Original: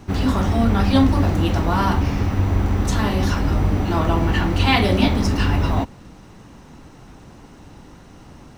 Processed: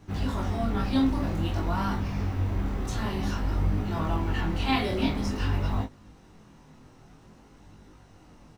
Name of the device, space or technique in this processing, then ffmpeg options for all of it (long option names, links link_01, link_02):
double-tracked vocal: -filter_complex "[0:a]asplit=2[link_01][link_02];[link_02]adelay=19,volume=-5.5dB[link_03];[link_01][link_03]amix=inputs=2:normalize=0,flanger=delay=19.5:depth=7.5:speed=0.51,volume=-8dB"